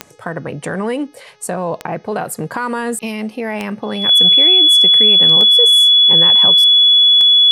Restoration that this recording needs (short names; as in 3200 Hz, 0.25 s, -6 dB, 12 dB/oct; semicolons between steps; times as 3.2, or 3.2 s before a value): de-click; de-hum 420.7 Hz, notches 15; notch 3400 Hz, Q 30